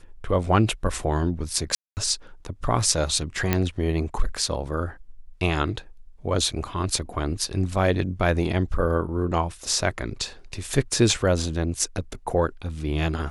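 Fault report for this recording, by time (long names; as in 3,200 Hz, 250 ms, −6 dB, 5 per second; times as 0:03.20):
0:01.75–0:01.97: drop-out 219 ms
0:03.53: click −7 dBFS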